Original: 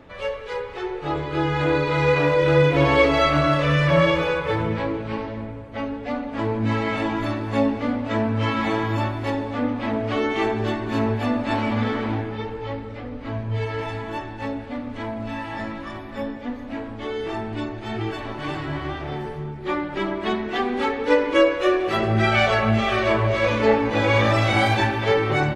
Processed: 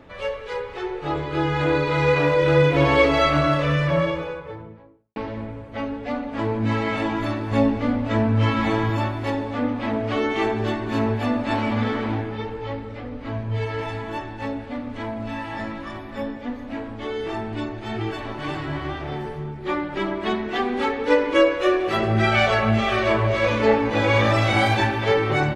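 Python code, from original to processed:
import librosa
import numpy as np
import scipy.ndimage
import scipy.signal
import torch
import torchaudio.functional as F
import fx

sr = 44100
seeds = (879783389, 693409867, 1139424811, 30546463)

y = fx.studio_fade_out(x, sr, start_s=3.28, length_s=1.88)
y = fx.low_shelf(y, sr, hz=130.0, db=9.0, at=(7.51, 8.9))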